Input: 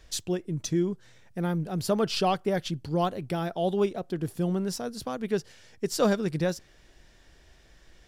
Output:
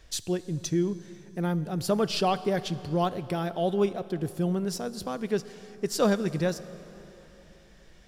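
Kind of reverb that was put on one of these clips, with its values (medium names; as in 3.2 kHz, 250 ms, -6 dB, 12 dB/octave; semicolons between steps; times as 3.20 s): plate-style reverb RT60 3.8 s, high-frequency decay 0.75×, DRR 14.5 dB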